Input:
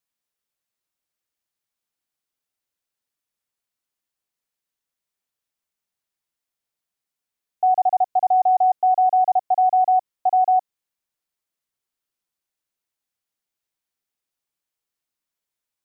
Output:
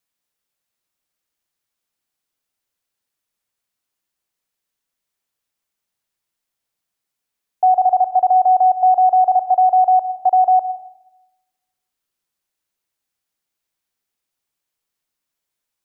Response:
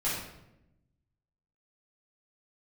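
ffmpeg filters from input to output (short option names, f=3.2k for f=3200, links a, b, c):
-filter_complex "[0:a]asplit=2[a][b];[1:a]atrim=start_sample=2205,asetrate=52920,aresample=44100,adelay=88[c];[b][c]afir=irnorm=-1:irlink=0,volume=-19dB[d];[a][d]amix=inputs=2:normalize=0,volume=4.5dB"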